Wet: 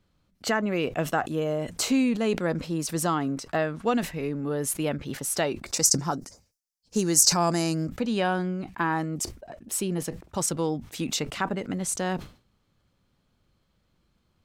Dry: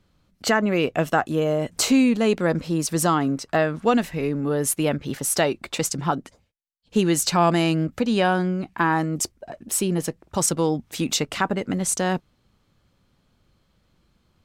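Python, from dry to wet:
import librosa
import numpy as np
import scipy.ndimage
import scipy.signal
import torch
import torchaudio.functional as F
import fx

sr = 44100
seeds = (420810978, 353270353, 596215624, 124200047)

y = fx.high_shelf_res(x, sr, hz=4200.0, db=8.5, q=3.0, at=(5.66, 7.89))
y = fx.sustainer(y, sr, db_per_s=150.0)
y = y * librosa.db_to_amplitude(-5.5)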